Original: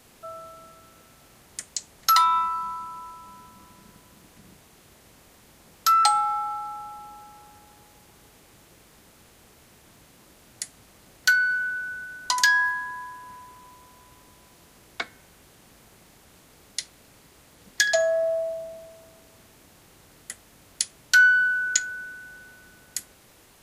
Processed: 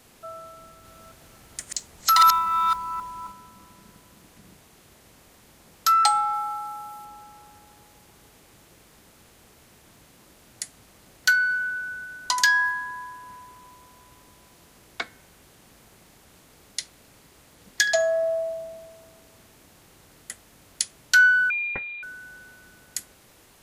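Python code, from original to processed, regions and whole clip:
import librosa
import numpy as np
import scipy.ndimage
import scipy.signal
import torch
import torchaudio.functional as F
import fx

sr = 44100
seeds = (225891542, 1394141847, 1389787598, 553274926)

y = fx.chain(x, sr, fx.reverse_delay(ms=269, wet_db=-2),
    fx.low_shelf(hz=74.0, db=7.5),
    fx.mod_noise(seeds[0], snr_db=30), at=(0.58, 3.32))
y = fx.chain(y, sr, fx.highpass(hz=86.0, slope=12),
    fx.high_shelf(hz=9300.0, db=8.5), at=(6.33, 7.05))
y = fx.chain(y, sr, fx.peak_eq(hz=370.0, db=-9.0, octaves=2.0),
    fx.freq_invert(carrier_hz=3900), at=(21.5, 22.03))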